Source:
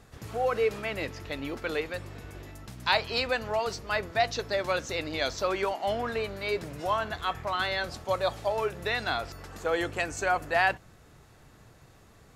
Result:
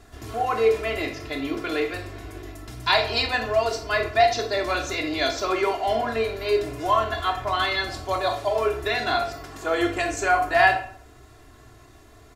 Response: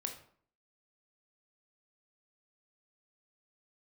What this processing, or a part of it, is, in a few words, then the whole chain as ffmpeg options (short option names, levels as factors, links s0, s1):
microphone above a desk: -filter_complex "[0:a]aecho=1:1:2.9:0.89[s0];[1:a]atrim=start_sample=2205[s1];[s0][s1]afir=irnorm=-1:irlink=0,volume=1.58"